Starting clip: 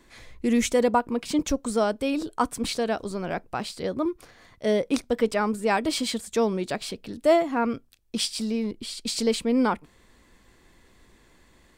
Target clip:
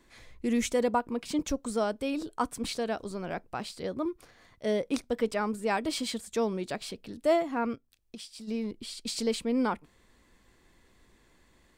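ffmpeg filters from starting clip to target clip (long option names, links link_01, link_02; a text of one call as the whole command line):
ffmpeg -i in.wav -filter_complex "[0:a]asplit=3[link_01][link_02][link_03];[link_01]afade=type=out:start_time=7.74:duration=0.02[link_04];[link_02]acompressor=threshold=-38dB:ratio=5,afade=type=in:start_time=7.74:duration=0.02,afade=type=out:start_time=8.47:duration=0.02[link_05];[link_03]afade=type=in:start_time=8.47:duration=0.02[link_06];[link_04][link_05][link_06]amix=inputs=3:normalize=0,volume=-5.5dB" out.wav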